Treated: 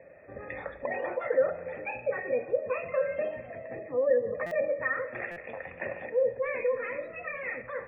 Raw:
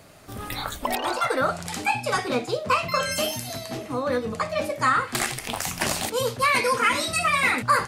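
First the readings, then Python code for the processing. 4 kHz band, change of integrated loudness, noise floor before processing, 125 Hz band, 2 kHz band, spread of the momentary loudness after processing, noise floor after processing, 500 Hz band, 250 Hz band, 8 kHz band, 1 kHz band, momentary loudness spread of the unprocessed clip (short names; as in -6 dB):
under -35 dB, -7.0 dB, -40 dBFS, -16.0 dB, -10.0 dB, 13 LU, -48 dBFS, 0.0 dB, -14.0 dB, under -40 dB, -17.0 dB, 11 LU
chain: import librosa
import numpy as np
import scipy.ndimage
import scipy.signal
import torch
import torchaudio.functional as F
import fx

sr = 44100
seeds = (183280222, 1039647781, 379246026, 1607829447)

y = fx.octave_divider(x, sr, octaves=1, level_db=-5.0)
y = scipy.signal.sosfilt(scipy.signal.butter(2, 46.0, 'highpass', fs=sr, output='sos'), y)
y = np.clip(10.0 ** (18.5 / 20.0) * y, -1.0, 1.0) / 10.0 ** (18.5 / 20.0)
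y = fx.peak_eq(y, sr, hz=1100.0, db=4.5, octaves=1.9)
y = fx.rider(y, sr, range_db=10, speed_s=2.0)
y = fx.formant_cascade(y, sr, vowel='e')
y = fx.spec_gate(y, sr, threshold_db=-30, keep='strong')
y = y + 10.0 ** (-22.0 / 20.0) * np.pad(y, (int(300 * sr / 1000.0), 0))[:len(y)]
y = fx.rev_freeverb(y, sr, rt60_s=2.8, hf_ratio=0.25, predelay_ms=5, drr_db=13.5)
y = fx.buffer_glitch(y, sr, at_s=(4.46, 5.31), block=256, repeats=8)
y = F.gain(torch.from_numpy(y), 1.5).numpy()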